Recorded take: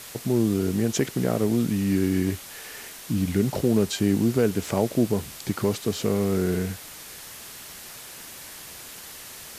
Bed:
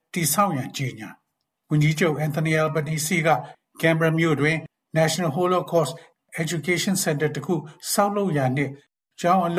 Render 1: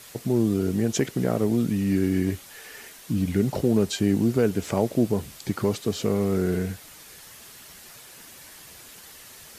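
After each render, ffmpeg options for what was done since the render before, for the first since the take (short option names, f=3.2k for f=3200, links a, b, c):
-af "afftdn=nr=6:nf=-42"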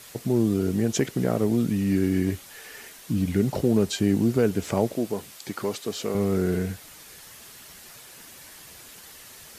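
-filter_complex "[0:a]asettb=1/sr,asplit=3[a][b][c];[a]atrim=end=4.944[d];[b]atrim=start=4.94:end=6.15,asetpts=PTS-STARTPTS,afade=t=in:d=0.004:c=qsin,afade=t=out:st=1.206:d=0.004:c=qsin,highpass=f=440:p=1[e];[c]atrim=start=6.146[f];[d][e]acrossfade=d=0.004:c1=hsin:c2=qsin[g];[g][f]acrossfade=d=0.004:c1=qsin:c2=hsin"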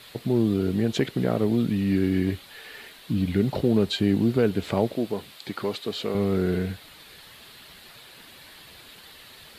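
-af "highshelf=f=4.9k:t=q:w=3:g=-6.5"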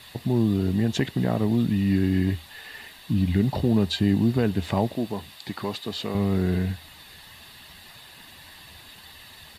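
-af "equalizer=f=81:t=o:w=0.22:g=9,aecho=1:1:1.1:0.45"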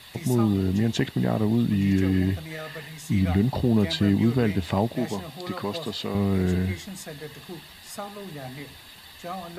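-filter_complex "[1:a]volume=-16dB[a];[0:a][a]amix=inputs=2:normalize=0"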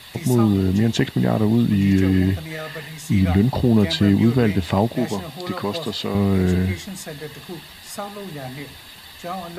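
-af "volume=5dB"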